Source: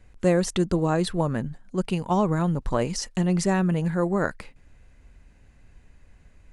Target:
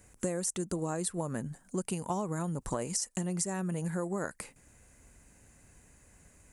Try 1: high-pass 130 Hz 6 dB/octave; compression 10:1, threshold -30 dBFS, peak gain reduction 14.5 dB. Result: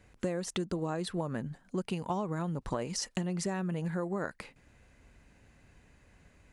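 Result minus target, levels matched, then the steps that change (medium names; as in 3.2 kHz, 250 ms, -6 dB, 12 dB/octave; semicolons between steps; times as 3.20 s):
8 kHz band -7.0 dB
add after high-pass: resonant high shelf 5.7 kHz +13.5 dB, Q 1.5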